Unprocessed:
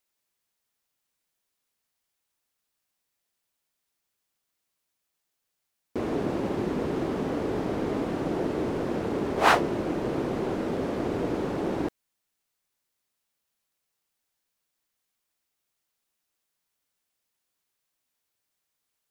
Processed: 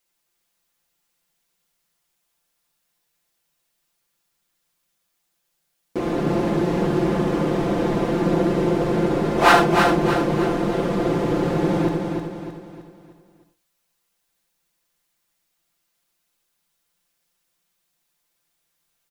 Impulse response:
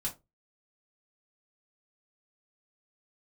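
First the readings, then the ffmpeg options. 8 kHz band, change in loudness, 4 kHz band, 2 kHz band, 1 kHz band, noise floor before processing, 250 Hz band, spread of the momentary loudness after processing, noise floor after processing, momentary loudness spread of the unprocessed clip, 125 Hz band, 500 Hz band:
+7.5 dB, +8.0 dB, +8.0 dB, +8.0 dB, +8.0 dB, -82 dBFS, +8.0 dB, 12 LU, -74 dBFS, 6 LU, +11.0 dB, +7.5 dB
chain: -filter_complex "[0:a]aecho=1:1:5.8:0.71,aecho=1:1:310|620|930|1240|1550:0.562|0.242|0.104|0.0447|0.0192,asplit=2[s0][s1];[1:a]atrim=start_sample=2205,adelay=60[s2];[s1][s2]afir=irnorm=-1:irlink=0,volume=0.422[s3];[s0][s3]amix=inputs=2:normalize=0,volume=1.5"

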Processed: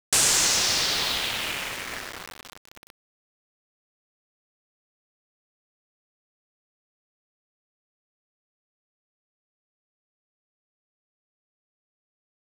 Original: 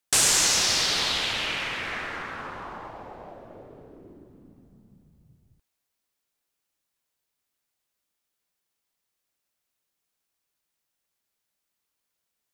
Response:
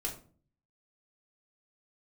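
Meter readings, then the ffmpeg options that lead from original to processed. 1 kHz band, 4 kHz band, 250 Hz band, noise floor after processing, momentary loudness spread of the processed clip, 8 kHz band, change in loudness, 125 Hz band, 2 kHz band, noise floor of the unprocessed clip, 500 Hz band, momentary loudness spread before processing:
-1.5 dB, -0.5 dB, -1.5 dB, under -85 dBFS, 19 LU, 0.0 dB, +0.5 dB, -1.0 dB, -1.0 dB, -82 dBFS, -1.5 dB, 21 LU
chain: -af "aeval=exprs='val(0)*gte(abs(val(0)),0.0335)':c=same"

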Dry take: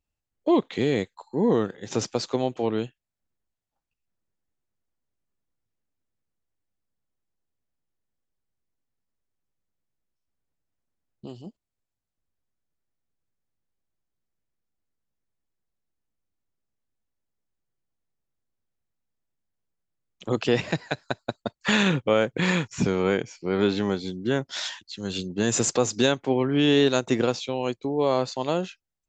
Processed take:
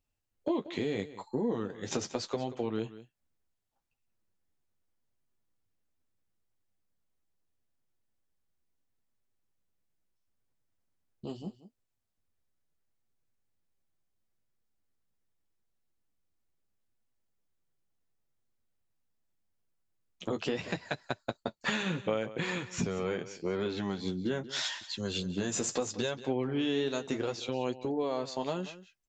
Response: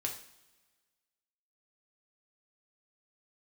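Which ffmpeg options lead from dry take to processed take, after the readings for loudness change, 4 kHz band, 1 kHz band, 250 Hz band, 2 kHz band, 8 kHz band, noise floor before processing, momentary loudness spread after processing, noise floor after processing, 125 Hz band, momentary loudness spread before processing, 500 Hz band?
-9.0 dB, -8.0 dB, -9.0 dB, -9.0 dB, -8.5 dB, -8.0 dB, under -85 dBFS, 7 LU, -81 dBFS, -9.5 dB, 11 LU, -9.5 dB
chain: -af "acompressor=threshold=0.0316:ratio=5,flanger=delay=8:depth=4.5:regen=-31:speed=0.76:shape=sinusoidal,aecho=1:1:184:0.168,volume=1.58"

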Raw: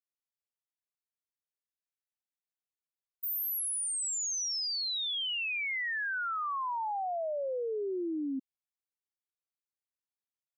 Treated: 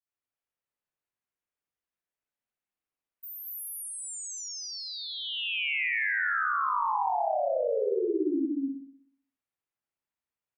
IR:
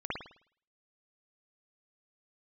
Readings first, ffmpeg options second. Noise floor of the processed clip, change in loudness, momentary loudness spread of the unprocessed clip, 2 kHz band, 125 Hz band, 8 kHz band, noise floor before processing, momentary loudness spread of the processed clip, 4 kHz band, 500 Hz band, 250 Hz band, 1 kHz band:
under -85 dBFS, +2.5 dB, 4 LU, +5.0 dB, no reading, -5.0 dB, under -85 dBFS, 10 LU, -1.5 dB, +6.0 dB, +6.5 dB, +6.0 dB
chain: -filter_complex "[0:a]aecho=1:1:230.3|274.1:0.891|0.251[s0];[1:a]atrim=start_sample=2205,asetrate=37044,aresample=44100[s1];[s0][s1]afir=irnorm=-1:irlink=0,volume=0.668"

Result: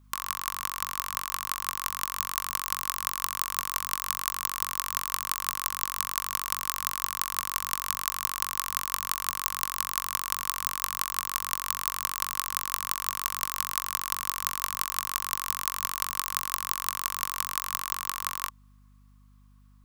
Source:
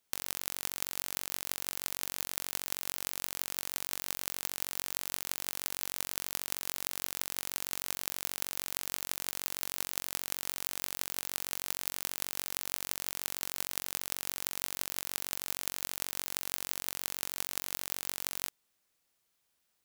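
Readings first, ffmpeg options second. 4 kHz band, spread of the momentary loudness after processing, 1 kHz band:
+3.5 dB, 2 LU, +16.0 dB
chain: -filter_complex "[0:a]acrossover=split=3900[s0][s1];[s1]dynaudnorm=f=130:g=31:m=1.5[s2];[s0][s2]amix=inputs=2:normalize=0,highpass=f=1100:t=q:w=13,aeval=exprs='0.794*(cos(1*acos(clip(val(0)/0.794,-1,1)))-cos(1*PI/2))+0.0562*(cos(3*acos(clip(val(0)/0.794,-1,1)))-cos(3*PI/2))+0.0398*(cos(6*acos(clip(val(0)/0.794,-1,1)))-cos(6*PI/2))':c=same,aeval=exprs='val(0)+0.00112*(sin(2*PI*50*n/s)+sin(2*PI*2*50*n/s)/2+sin(2*PI*3*50*n/s)/3+sin(2*PI*4*50*n/s)/4+sin(2*PI*5*50*n/s)/5)':c=same,volume=1.5"

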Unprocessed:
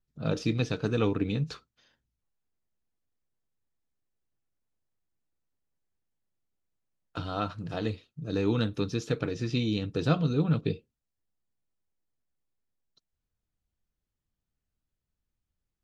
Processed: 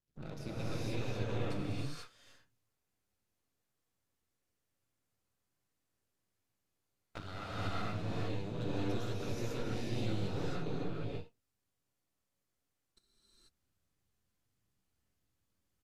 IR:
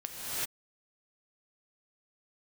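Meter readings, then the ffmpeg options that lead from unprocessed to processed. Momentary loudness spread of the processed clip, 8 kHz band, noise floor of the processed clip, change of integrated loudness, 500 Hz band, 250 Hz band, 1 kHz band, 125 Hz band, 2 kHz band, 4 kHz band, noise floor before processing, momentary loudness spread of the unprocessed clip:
10 LU, no reading, -85 dBFS, -9.5 dB, -8.5 dB, -10.5 dB, -6.0 dB, -8.5 dB, -6.5 dB, -7.5 dB, under -85 dBFS, 9 LU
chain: -filter_complex "[0:a]highpass=68,acompressor=threshold=0.01:ratio=6,aeval=exprs='max(val(0),0)':c=same[s0];[1:a]atrim=start_sample=2205,asetrate=34839,aresample=44100[s1];[s0][s1]afir=irnorm=-1:irlink=0,aresample=32000,aresample=44100,volume=1.33"

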